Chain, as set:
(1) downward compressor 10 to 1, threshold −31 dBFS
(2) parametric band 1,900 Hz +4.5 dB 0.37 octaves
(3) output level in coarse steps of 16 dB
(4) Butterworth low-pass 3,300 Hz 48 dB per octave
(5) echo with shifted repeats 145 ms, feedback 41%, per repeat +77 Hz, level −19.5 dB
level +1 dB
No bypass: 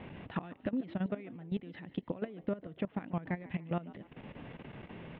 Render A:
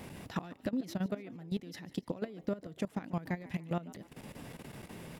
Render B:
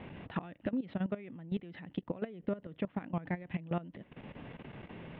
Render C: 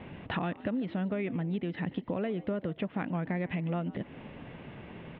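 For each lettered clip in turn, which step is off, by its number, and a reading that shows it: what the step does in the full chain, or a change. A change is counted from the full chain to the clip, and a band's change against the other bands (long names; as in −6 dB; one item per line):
4, 4 kHz band +5.0 dB
5, echo-to-direct ratio −18.5 dB to none audible
3, change in crest factor −3.0 dB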